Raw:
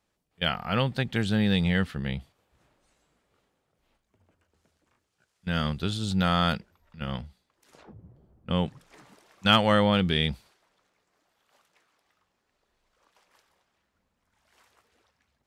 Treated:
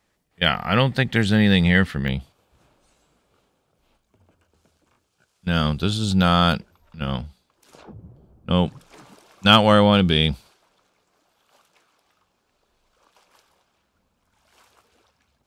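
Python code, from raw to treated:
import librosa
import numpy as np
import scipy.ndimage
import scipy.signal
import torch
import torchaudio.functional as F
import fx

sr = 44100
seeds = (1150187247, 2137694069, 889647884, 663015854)

y = fx.peak_eq(x, sr, hz=1900.0, db=fx.steps((0.0, 6.0), (2.08, -8.0)), octaves=0.27)
y = y * 10.0 ** (7.0 / 20.0)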